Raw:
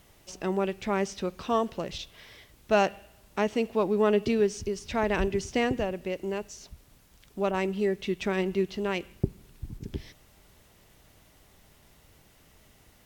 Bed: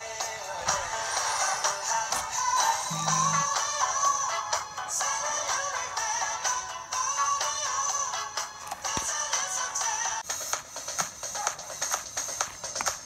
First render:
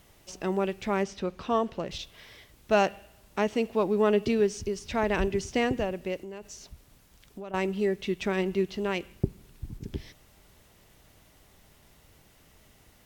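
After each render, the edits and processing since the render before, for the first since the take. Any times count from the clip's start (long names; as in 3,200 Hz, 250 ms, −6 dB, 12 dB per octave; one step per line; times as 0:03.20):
0:01.03–0:01.91: high-shelf EQ 6,700 Hz −11.5 dB
0:06.22–0:07.54: downward compressor, threshold −37 dBFS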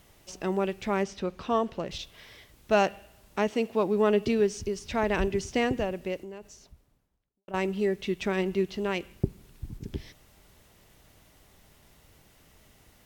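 0:03.50–0:03.91: high-pass filter 180 Hz → 62 Hz
0:06.04–0:07.48: fade out and dull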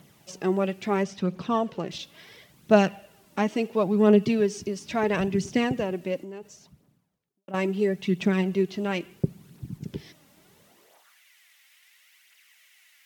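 high-pass filter sweep 160 Hz → 2,100 Hz, 0:10.62–0:11.20
phase shifter 0.73 Hz, delay 3.8 ms, feedback 45%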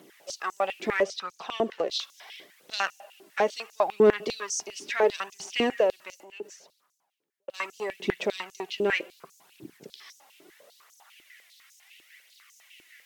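soft clipping −14 dBFS, distortion −16 dB
high-pass on a step sequencer 10 Hz 340–6,200 Hz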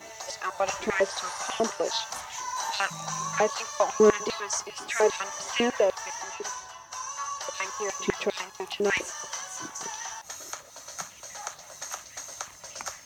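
mix in bed −7.5 dB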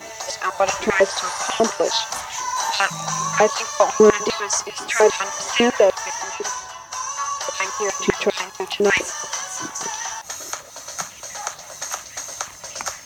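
level +8.5 dB
brickwall limiter −3 dBFS, peak gain reduction 3 dB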